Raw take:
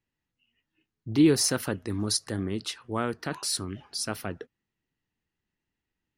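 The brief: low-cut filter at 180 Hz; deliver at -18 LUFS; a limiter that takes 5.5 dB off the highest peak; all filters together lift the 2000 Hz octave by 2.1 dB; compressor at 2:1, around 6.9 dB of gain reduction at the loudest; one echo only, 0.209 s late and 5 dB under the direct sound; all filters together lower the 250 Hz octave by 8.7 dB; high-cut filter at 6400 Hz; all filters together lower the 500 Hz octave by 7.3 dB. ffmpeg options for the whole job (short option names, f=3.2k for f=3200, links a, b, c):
-af "highpass=180,lowpass=6.4k,equalizer=f=250:t=o:g=-8.5,equalizer=f=500:t=o:g=-6,equalizer=f=2k:t=o:g=3.5,acompressor=threshold=-36dB:ratio=2,alimiter=level_in=1.5dB:limit=-24dB:level=0:latency=1,volume=-1.5dB,aecho=1:1:209:0.562,volume=19.5dB"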